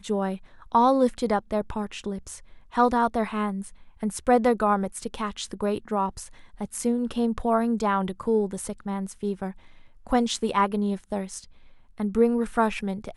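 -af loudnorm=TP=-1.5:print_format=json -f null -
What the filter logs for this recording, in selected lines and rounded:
"input_i" : "-25.9",
"input_tp" : "-7.8",
"input_lra" : "1.9",
"input_thresh" : "-36.6",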